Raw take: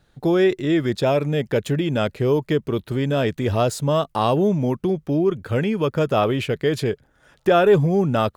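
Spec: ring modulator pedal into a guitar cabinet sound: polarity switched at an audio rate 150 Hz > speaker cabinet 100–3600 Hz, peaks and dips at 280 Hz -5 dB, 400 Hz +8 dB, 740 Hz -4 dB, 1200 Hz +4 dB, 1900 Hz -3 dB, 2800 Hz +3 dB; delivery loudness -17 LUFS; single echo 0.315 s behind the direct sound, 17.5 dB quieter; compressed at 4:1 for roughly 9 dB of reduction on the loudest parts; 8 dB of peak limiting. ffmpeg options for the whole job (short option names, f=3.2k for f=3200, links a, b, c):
-af "acompressor=threshold=-22dB:ratio=4,alimiter=limit=-20dB:level=0:latency=1,aecho=1:1:315:0.133,aeval=exprs='val(0)*sgn(sin(2*PI*150*n/s))':c=same,highpass=100,equalizer=f=280:t=q:w=4:g=-5,equalizer=f=400:t=q:w=4:g=8,equalizer=f=740:t=q:w=4:g=-4,equalizer=f=1.2k:t=q:w=4:g=4,equalizer=f=1.9k:t=q:w=4:g=-3,equalizer=f=2.8k:t=q:w=4:g=3,lowpass=f=3.6k:w=0.5412,lowpass=f=3.6k:w=1.3066,volume=11.5dB"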